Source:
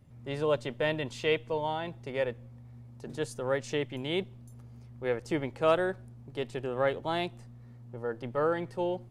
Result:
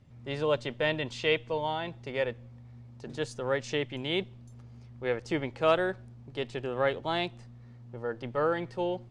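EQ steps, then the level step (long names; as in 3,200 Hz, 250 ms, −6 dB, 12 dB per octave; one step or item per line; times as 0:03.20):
high-frequency loss of the air 110 metres
high-shelf EQ 2,500 Hz +9.5 dB
0.0 dB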